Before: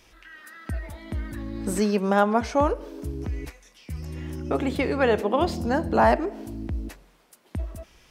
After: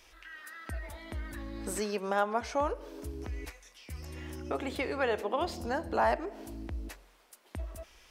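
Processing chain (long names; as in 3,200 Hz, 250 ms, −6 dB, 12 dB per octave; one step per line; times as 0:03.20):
parametric band 150 Hz −13 dB 1.9 octaves
in parallel at +2 dB: downward compressor, threshold −34 dBFS, peak gain reduction 17.5 dB
on the sum: level −8.5 dB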